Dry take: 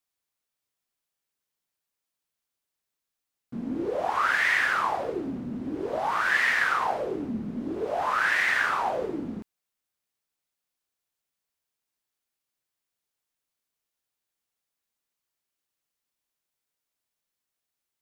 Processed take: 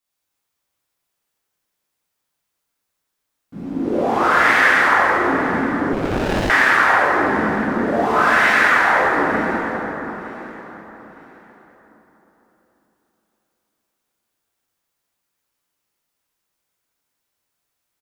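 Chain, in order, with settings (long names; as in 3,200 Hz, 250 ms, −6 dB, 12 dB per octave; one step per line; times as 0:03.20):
repeating echo 911 ms, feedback 29%, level −18 dB
dense smooth reverb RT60 4.1 s, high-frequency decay 0.45×, DRR −10 dB
0:05.93–0:06.50: windowed peak hold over 33 samples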